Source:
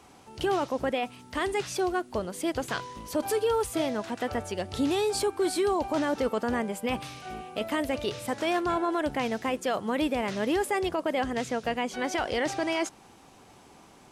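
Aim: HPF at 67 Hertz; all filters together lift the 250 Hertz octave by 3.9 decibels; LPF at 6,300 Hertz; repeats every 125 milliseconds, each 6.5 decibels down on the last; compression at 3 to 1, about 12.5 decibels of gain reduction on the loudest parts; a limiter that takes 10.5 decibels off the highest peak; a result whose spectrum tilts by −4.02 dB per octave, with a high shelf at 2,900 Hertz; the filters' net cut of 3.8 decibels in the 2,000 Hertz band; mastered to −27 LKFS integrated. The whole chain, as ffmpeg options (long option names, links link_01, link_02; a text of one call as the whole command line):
ffmpeg -i in.wav -af "highpass=67,lowpass=6300,equalizer=frequency=250:width_type=o:gain=5,equalizer=frequency=2000:width_type=o:gain=-8,highshelf=frequency=2900:gain=8,acompressor=threshold=-38dB:ratio=3,alimiter=level_in=10dB:limit=-24dB:level=0:latency=1,volume=-10dB,aecho=1:1:125|250|375|500|625|750:0.473|0.222|0.105|0.0491|0.0231|0.0109,volume=14.5dB" out.wav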